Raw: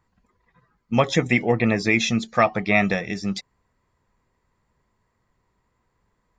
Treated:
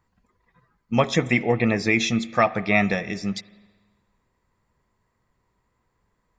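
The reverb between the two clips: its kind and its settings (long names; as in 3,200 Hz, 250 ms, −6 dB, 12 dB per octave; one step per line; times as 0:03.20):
spring reverb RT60 1.4 s, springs 39/48 ms, chirp 45 ms, DRR 17 dB
level −1 dB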